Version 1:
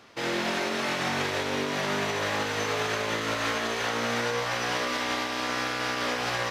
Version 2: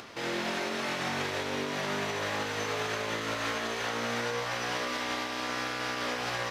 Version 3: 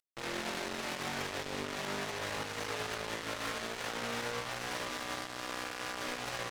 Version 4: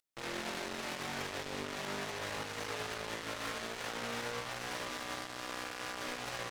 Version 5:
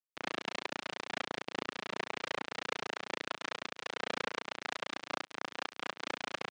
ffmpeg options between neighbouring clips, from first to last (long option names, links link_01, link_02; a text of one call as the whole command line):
ffmpeg -i in.wav -af "acompressor=mode=upward:threshold=-33dB:ratio=2.5,volume=-4dB" out.wav
ffmpeg -i in.wav -af "highshelf=frequency=6000:gain=-5.5,acrusher=bits=4:mix=0:aa=0.5,volume=-5dB" out.wav
ffmpeg -i in.wav -af "alimiter=level_in=10dB:limit=-24dB:level=0:latency=1,volume=-10dB,volume=3.5dB" out.wav
ffmpeg -i in.wav -af "tremolo=f=29:d=1,acrusher=bits=4:mix=0:aa=0.5,highpass=200,lowpass=4200,volume=14dB" out.wav